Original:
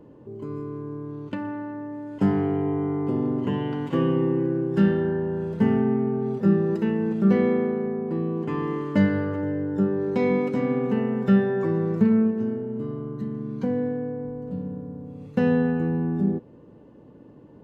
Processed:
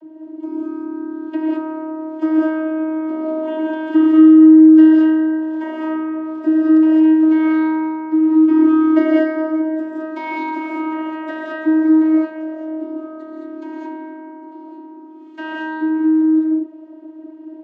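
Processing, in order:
reverb whose tail is shaped and stops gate 240 ms rising, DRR −3.5 dB
channel vocoder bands 32, saw 315 Hz
level +5 dB

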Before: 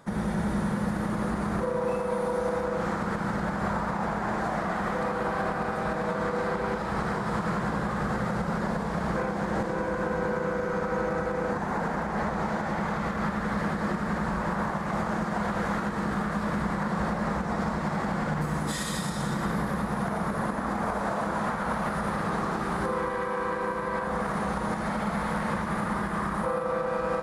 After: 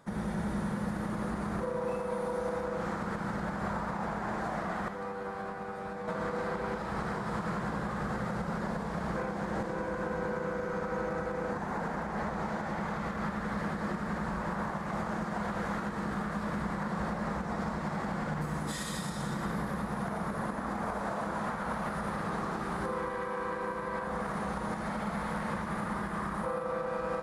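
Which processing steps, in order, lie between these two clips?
0:04.88–0:06.08: tuned comb filter 98 Hz, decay 0.19 s, harmonics all, mix 80%
level −5.5 dB

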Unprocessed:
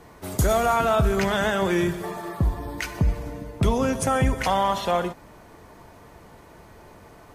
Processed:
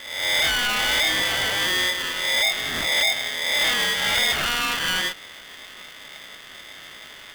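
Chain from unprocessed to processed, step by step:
peak hold with a rise ahead of every peak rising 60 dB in 0.75 s
parametric band 160 Hz +5.5 dB 2.3 octaves
soft clipping −20 dBFS, distortion −7 dB
voice inversion scrambler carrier 2,900 Hz
0:04.15–0:04.80: one-pitch LPC vocoder at 8 kHz 240 Hz
ring modulator with a square carrier 730 Hz
level +1 dB

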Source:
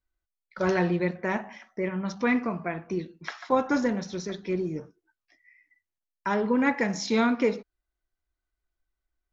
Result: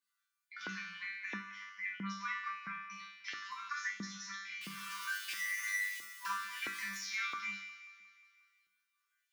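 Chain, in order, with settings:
0:04.61–0:06.97: converter with a step at zero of −27.5 dBFS
brick-wall band-stop 220–990 Hz
downward compressor, threshold −29 dBFS, peak gain reduction 7.5 dB
resonators tuned to a chord G3 fifth, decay 0.64 s
auto-filter high-pass saw up 1.5 Hz 310–2,900 Hz
mains-hum notches 60/120/180/240/300/360/420 Hz
delay with a high-pass on its return 179 ms, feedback 46%, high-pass 1,500 Hz, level −14.5 dB
multiband upward and downward compressor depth 40%
level +13 dB

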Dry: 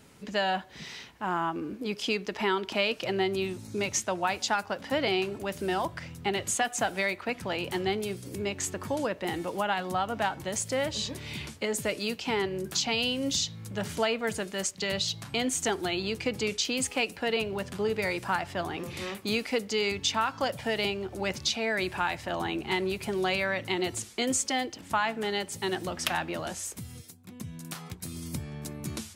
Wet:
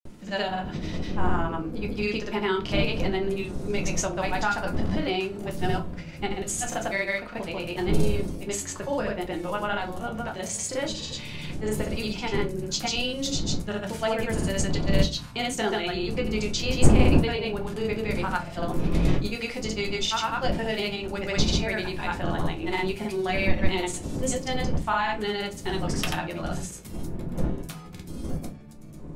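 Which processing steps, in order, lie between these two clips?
fade-out on the ending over 1.67 s
wind on the microphone 230 Hz −32 dBFS
granular cloud, pitch spread up and down by 0 semitones
rectangular room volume 120 cubic metres, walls furnished, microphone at 0.93 metres

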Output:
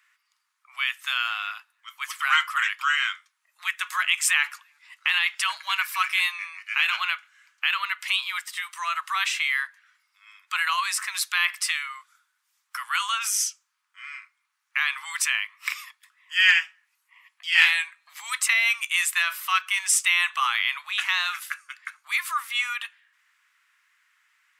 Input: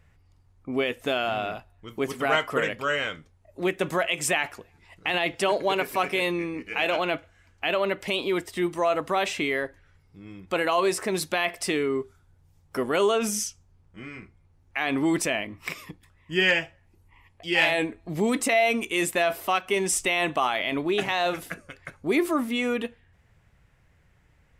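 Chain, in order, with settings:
Butterworth high-pass 1,100 Hz 48 dB per octave
level +5 dB

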